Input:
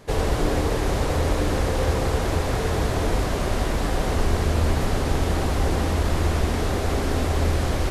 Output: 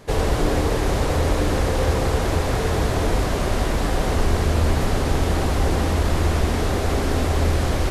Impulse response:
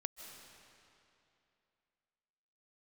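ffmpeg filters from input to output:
-af "acontrast=20,volume=-2.5dB"

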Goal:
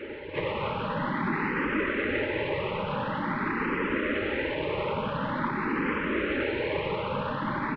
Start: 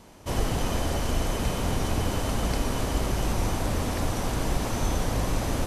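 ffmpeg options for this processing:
-filter_complex "[0:a]highpass=f=280:p=1,asplit=2[a][b];[b]asetrate=55563,aresample=44100,atempo=0.793701,volume=-9dB[c];[a][c]amix=inputs=2:normalize=0,alimiter=level_in=5dB:limit=-24dB:level=0:latency=1,volume=-5dB,asetrate=32193,aresample=44100,afftfilt=real='hypot(re,im)*cos(2*PI*random(0))':imag='hypot(re,im)*sin(2*PI*random(1))':win_size=512:overlap=0.75,aeval=exprs='0.0355*sin(PI/2*3.55*val(0)/0.0355)':c=same,acontrast=79,aeval=exprs='0.0794*(cos(1*acos(clip(val(0)/0.0794,-1,1)))-cos(1*PI/2))+0.00794*(cos(2*acos(clip(val(0)/0.0794,-1,1)))-cos(2*PI/2))+0.0112*(cos(3*acos(clip(val(0)/0.0794,-1,1)))-cos(3*PI/2))+0.01*(cos(5*acos(clip(val(0)/0.0794,-1,1)))-cos(5*PI/2))':c=same,asuperstop=centerf=970:order=20:qfactor=6.3,highpass=f=450:t=q:w=0.5412,highpass=f=450:t=q:w=1.307,lowpass=f=2.9k:t=q:w=0.5176,lowpass=f=2.9k:t=q:w=0.7071,lowpass=f=2.9k:t=q:w=1.932,afreqshift=-260,asplit=2[d][e];[e]afreqshift=0.47[f];[d][f]amix=inputs=2:normalize=1,volume=4dB"

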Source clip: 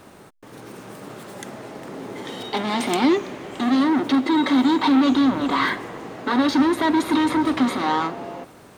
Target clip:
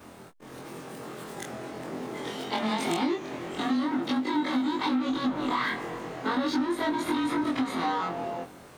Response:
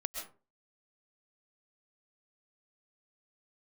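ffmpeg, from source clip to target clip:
-af "afftfilt=real='re':imag='-im':win_size=2048:overlap=0.75,acompressor=threshold=-27dB:ratio=6,volume=2.5dB"

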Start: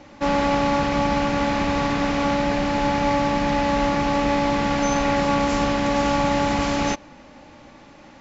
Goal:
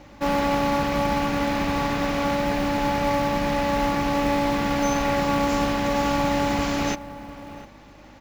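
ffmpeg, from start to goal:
-filter_complex "[0:a]asplit=2[a][b];[b]adelay=699.7,volume=-15dB,highshelf=f=4k:g=-15.7[c];[a][c]amix=inputs=2:normalize=0,acrusher=bits=6:mode=log:mix=0:aa=0.000001,aeval=exprs='val(0)+0.00316*(sin(2*PI*50*n/s)+sin(2*PI*2*50*n/s)/2+sin(2*PI*3*50*n/s)/3+sin(2*PI*4*50*n/s)/4+sin(2*PI*5*50*n/s)/5)':c=same,volume=-2dB"

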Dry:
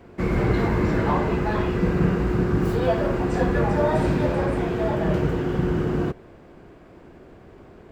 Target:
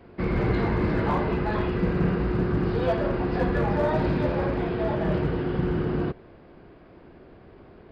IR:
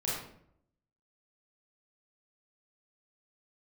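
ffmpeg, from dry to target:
-af "aresample=11025,aresample=44100,aeval=exprs='clip(val(0),-1,0.158)':c=same,volume=-2.5dB"

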